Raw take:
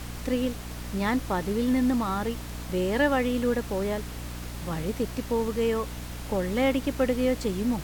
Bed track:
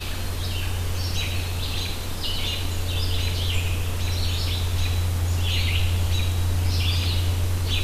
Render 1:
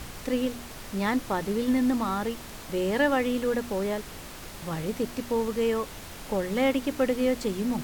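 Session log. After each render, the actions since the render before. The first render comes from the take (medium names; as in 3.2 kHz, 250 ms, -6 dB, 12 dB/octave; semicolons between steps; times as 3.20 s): de-hum 60 Hz, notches 5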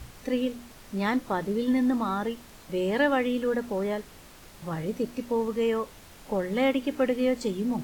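noise print and reduce 8 dB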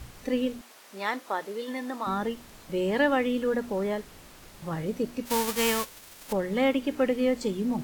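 0.61–2.07 s: high-pass 510 Hz; 5.25–6.31 s: formants flattened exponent 0.3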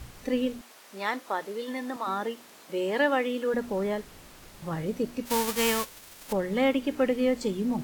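1.96–3.54 s: high-pass 290 Hz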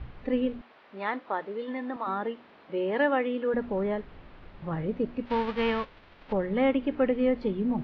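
Bessel low-pass 2.2 kHz, order 8; bass shelf 68 Hz +7 dB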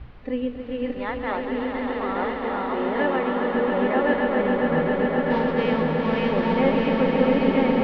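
backward echo that repeats 594 ms, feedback 62%, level 0 dB; echo with a slow build-up 136 ms, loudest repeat 5, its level -7.5 dB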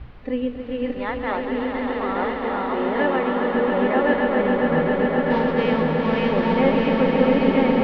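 trim +2 dB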